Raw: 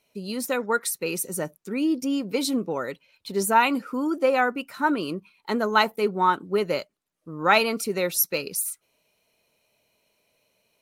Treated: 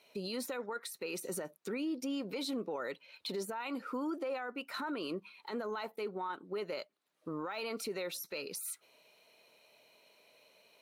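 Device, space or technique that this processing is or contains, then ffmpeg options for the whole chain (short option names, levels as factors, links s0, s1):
broadcast voice chain: -af "highpass=110,bass=f=250:g=-11,treble=f=4000:g=-7,deesser=0.65,acompressor=threshold=0.00794:ratio=3,equalizer=f=4000:t=o:w=0.41:g=5,alimiter=level_in=4.22:limit=0.0631:level=0:latency=1:release=17,volume=0.237,volume=2"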